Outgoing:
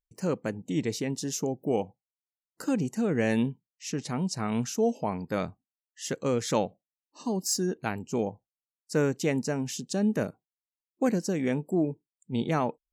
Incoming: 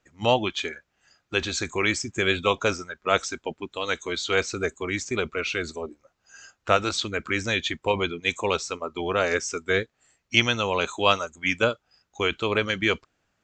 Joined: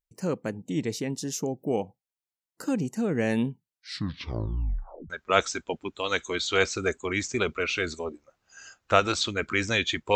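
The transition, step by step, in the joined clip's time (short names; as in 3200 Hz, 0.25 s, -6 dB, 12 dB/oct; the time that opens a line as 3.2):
outgoing
3.51 tape stop 1.59 s
5.1 switch to incoming from 2.87 s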